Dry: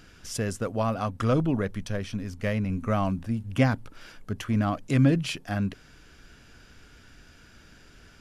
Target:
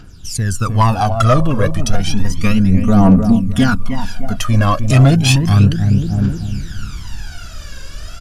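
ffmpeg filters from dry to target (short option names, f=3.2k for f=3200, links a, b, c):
-filter_complex "[0:a]equalizer=f=250:t=o:w=1:g=-4,equalizer=f=500:t=o:w=1:g=-8,equalizer=f=2k:t=o:w=1:g=-8,asoftclip=type=hard:threshold=-16.5dB,asettb=1/sr,asplit=3[a][b][c];[a]atrim=end=1.904[d];[b]atrim=start=1.9:end=4.38,asetpts=PTS-STARTPTS,afade=t=in:d=0.004:c=qsin,afade=t=out:st=2.476:d=0.004:c=qsin,aecho=1:1:4.2:0.82,atrim=end_sample=109368[e];[c]atrim=start=4.376[f];[d][e]acrossfade=d=0.004:c1=hsin:c2=qsin[g];[g][f]acrossfade=d=0.004:c1=qsin:c2=hsin,asplit=2[h][i];[i]adelay=306,lowpass=f=1.1k:p=1,volume=-8dB,asplit=2[j][k];[k]adelay=306,lowpass=f=1.1k:p=1,volume=0.5,asplit=2[l][m];[m]adelay=306,lowpass=f=1.1k:p=1,volume=0.5,asplit=2[n][o];[o]adelay=306,lowpass=f=1.1k:p=1,volume=0.5,asplit=2[p][q];[q]adelay=306,lowpass=f=1.1k:p=1,volume=0.5,asplit=2[r][s];[s]adelay=306,lowpass=f=1.1k:p=1,volume=0.5[t];[h][j][l][n][p][r][t]amix=inputs=7:normalize=0,aphaser=in_gain=1:out_gain=1:delay=1.9:decay=0.73:speed=0.32:type=triangular,dynaudnorm=f=430:g=3:m=14dB,asoftclip=type=tanh:threshold=-7.5dB,volume=5.5dB"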